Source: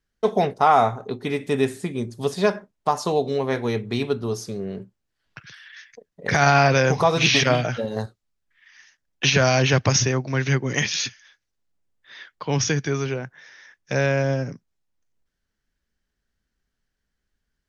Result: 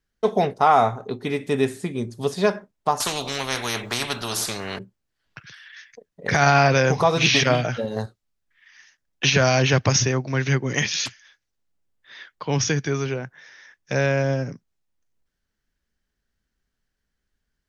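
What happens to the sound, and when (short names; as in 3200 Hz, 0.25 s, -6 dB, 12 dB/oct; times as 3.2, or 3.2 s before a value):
3–4.79 spectral compressor 4:1
11.04–12.28 Doppler distortion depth 0.84 ms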